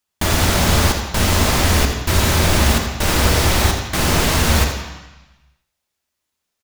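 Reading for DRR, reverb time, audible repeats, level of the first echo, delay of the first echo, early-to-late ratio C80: 2.5 dB, 1.0 s, 1, -10.0 dB, 83 ms, 5.5 dB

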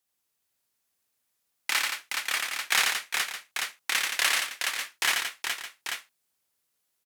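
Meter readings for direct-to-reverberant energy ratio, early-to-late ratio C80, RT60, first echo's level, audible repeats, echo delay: no reverb, no reverb, no reverb, -3.0 dB, 5, 86 ms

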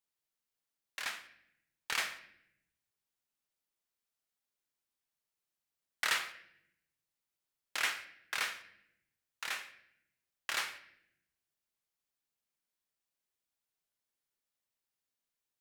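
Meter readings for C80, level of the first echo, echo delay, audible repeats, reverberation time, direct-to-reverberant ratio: 15.5 dB, no echo, no echo, no echo, 0.80 s, 9.0 dB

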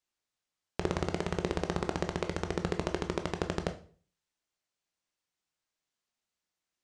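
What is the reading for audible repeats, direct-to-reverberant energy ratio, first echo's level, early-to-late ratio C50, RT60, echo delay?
no echo, 6.5 dB, no echo, 13.0 dB, 0.45 s, no echo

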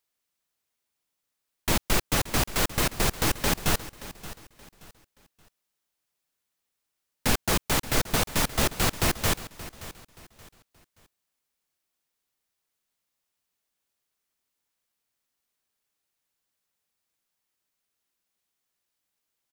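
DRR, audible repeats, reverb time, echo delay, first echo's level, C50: no reverb, 2, no reverb, 576 ms, -16.0 dB, no reverb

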